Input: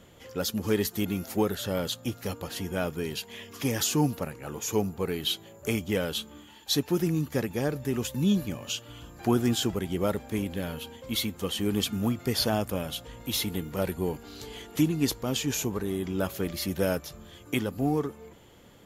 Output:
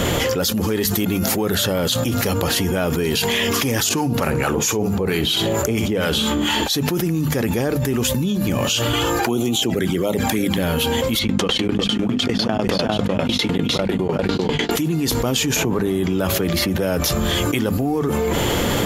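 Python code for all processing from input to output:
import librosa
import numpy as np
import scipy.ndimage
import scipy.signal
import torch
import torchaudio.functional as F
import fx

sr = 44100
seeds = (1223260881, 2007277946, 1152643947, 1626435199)

y = fx.chain(x, sr, fx.high_shelf(hz=9700.0, db=-7.5),
    fx.harmonic_tremolo(hz=4.4, depth_pct=70, crossover_hz=830.0),
    fx.room_flutter(wall_m=11.0, rt60_s=0.24), at=(3.89, 6.7))
y = fx.chain(y, sr, fx.env_flanger(rest_ms=3.0, full_db=-22.5),
    fx.highpass(hz=260.0, slope=6),
    fx.band_squash(depth_pct=40), at=(8.93, 10.58))
y = fx.chain(y, sr, fx.bandpass_edges(low_hz=150.0, high_hz=4600.0),
    fx.echo_single(ms=368, db=-4.5),
    fx.tremolo_decay(direction='decaying', hz=10.0, depth_db=34), at=(11.19, 14.71))
y = fx.chain(y, sr, fx.highpass(hz=59.0, slope=12),
    fx.high_shelf(hz=3800.0, db=-8.5),
    fx.band_squash(depth_pct=70), at=(15.56, 17.02))
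y = fx.hum_notches(y, sr, base_hz=50, count=5)
y = fx.env_flatten(y, sr, amount_pct=100)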